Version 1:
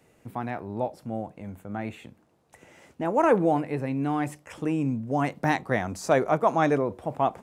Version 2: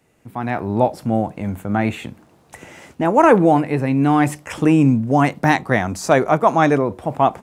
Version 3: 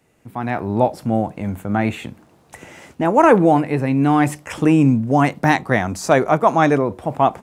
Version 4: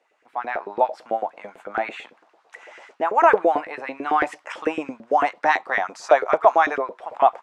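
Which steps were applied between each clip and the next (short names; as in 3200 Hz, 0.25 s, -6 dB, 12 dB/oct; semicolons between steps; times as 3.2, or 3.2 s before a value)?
bell 510 Hz -3 dB 0.75 oct; AGC gain up to 15 dB
nothing audible
BPF 180–5000 Hz; LFO high-pass saw up 9 Hz 430–1800 Hz; gain -5 dB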